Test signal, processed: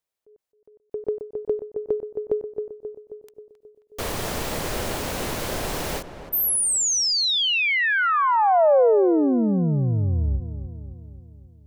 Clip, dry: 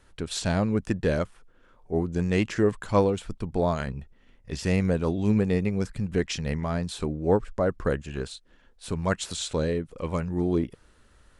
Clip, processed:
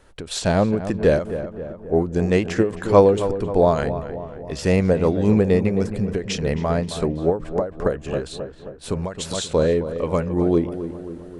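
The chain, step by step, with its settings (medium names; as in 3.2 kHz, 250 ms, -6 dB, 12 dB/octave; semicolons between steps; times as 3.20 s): peaking EQ 550 Hz +6.5 dB 1.4 oct; on a send: filtered feedback delay 267 ms, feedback 59%, low-pass 1.9 kHz, level -11 dB; on the sum: endings held to a fixed fall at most 160 dB/s; trim +4 dB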